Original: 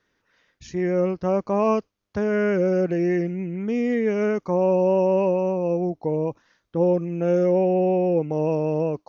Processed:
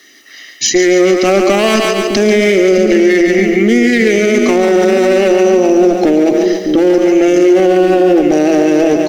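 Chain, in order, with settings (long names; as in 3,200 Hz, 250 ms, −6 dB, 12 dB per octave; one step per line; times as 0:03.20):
Bessel high-pass filter 260 Hz, order 8
high-shelf EQ 4,600 Hz +8 dB
comb filter 1 ms, depth 86%
in parallel at −0.5 dB: downward compressor, threshold −36 dBFS, peak gain reduction 18.5 dB
on the sum: asymmetric clip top −25 dBFS, bottom −16 dBFS
phaser with its sweep stopped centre 400 Hz, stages 4
speech leveller 0.5 s
on a send: echo with a time of its own for lows and highs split 380 Hz, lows 609 ms, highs 141 ms, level −6.5 dB
on the sum: boost into a limiter +24.5 dB
level −1 dB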